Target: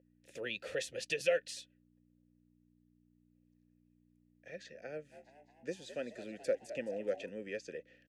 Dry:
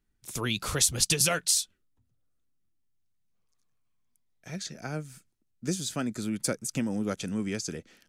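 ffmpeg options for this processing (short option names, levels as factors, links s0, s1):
-filter_complex "[0:a]aeval=exprs='val(0)+0.00562*(sin(2*PI*60*n/s)+sin(2*PI*2*60*n/s)/2+sin(2*PI*3*60*n/s)/3+sin(2*PI*4*60*n/s)/4+sin(2*PI*5*60*n/s)/5)':c=same,asplit=3[s0][s1][s2];[s0]bandpass=f=530:t=q:w=8,volume=1[s3];[s1]bandpass=f=1840:t=q:w=8,volume=0.501[s4];[s2]bandpass=f=2480:t=q:w=8,volume=0.355[s5];[s3][s4][s5]amix=inputs=3:normalize=0,asplit=3[s6][s7][s8];[s6]afade=t=out:st=5.11:d=0.02[s9];[s7]asplit=7[s10][s11][s12][s13][s14][s15][s16];[s11]adelay=213,afreqshift=66,volume=0.224[s17];[s12]adelay=426,afreqshift=132,volume=0.123[s18];[s13]adelay=639,afreqshift=198,volume=0.0676[s19];[s14]adelay=852,afreqshift=264,volume=0.0372[s20];[s15]adelay=1065,afreqshift=330,volume=0.0204[s21];[s16]adelay=1278,afreqshift=396,volume=0.0112[s22];[s10][s17][s18][s19][s20][s21][s22]amix=inputs=7:normalize=0,afade=t=in:st=5.11:d=0.02,afade=t=out:st=7.28:d=0.02[s23];[s8]afade=t=in:st=7.28:d=0.02[s24];[s9][s23][s24]amix=inputs=3:normalize=0,volume=1.68"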